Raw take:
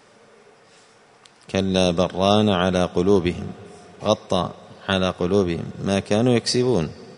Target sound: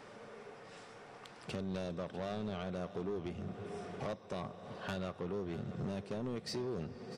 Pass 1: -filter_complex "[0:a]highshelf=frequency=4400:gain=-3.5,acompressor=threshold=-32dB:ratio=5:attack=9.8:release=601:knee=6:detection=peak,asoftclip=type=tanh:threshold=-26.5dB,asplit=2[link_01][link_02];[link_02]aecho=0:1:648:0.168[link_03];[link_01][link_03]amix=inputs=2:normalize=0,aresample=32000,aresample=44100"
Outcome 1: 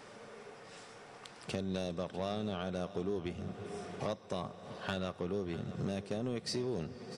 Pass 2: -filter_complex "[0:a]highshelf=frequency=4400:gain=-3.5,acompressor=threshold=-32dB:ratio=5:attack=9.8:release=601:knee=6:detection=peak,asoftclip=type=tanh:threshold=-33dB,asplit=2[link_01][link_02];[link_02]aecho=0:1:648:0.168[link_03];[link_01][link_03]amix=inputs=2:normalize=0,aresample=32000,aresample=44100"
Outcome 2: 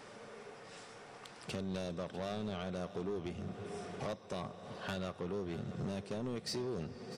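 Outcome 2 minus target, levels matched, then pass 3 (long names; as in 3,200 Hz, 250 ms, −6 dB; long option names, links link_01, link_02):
8,000 Hz band +4.5 dB
-filter_complex "[0:a]highshelf=frequency=4400:gain=-11,acompressor=threshold=-32dB:ratio=5:attack=9.8:release=601:knee=6:detection=peak,asoftclip=type=tanh:threshold=-33dB,asplit=2[link_01][link_02];[link_02]aecho=0:1:648:0.168[link_03];[link_01][link_03]amix=inputs=2:normalize=0,aresample=32000,aresample=44100"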